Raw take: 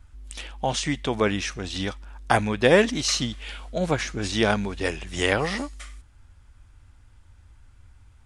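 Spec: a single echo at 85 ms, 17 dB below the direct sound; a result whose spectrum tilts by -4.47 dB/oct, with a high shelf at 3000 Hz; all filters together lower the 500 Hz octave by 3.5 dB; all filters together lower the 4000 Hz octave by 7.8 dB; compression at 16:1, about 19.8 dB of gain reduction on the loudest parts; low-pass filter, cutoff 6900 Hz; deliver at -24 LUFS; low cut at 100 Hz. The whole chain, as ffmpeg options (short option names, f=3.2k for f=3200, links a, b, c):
-af "highpass=100,lowpass=6.9k,equalizer=f=500:t=o:g=-4,highshelf=f=3k:g=-5,equalizer=f=4k:t=o:g=-6,acompressor=threshold=-34dB:ratio=16,aecho=1:1:85:0.141,volume=16dB"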